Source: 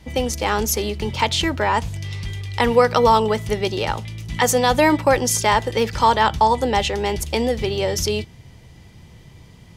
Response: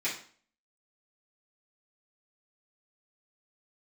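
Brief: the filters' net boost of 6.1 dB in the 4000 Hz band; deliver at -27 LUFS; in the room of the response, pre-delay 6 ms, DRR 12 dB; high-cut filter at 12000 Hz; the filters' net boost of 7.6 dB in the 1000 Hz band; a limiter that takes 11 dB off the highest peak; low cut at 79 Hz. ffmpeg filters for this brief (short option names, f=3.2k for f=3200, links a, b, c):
-filter_complex "[0:a]highpass=79,lowpass=12k,equalizer=f=1k:t=o:g=8.5,equalizer=f=4k:t=o:g=7.5,alimiter=limit=-8.5dB:level=0:latency=1,asplit=2[a][b];[1:a]atrim=start_sample=2205,adelay=6[c];[b][c]afir=irnorm=-1:irlink=0,volume=-19.5dB[d];[a][d]amix=inputs=2:normalize=0,volume=-7.5dB"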